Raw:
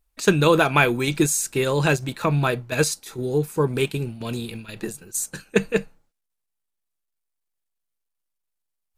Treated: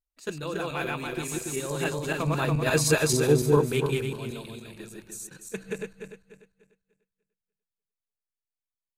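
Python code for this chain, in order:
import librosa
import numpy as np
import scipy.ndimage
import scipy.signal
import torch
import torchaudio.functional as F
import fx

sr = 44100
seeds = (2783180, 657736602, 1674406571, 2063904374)

y = fx.reverse_delay_fb(x, sr, ms=145, feedback_pct=58, wet_db=0)
y = fx.doppler_pass(y, sr, speed_mps=7, closest_m=2.5, pass_at_s=3.2)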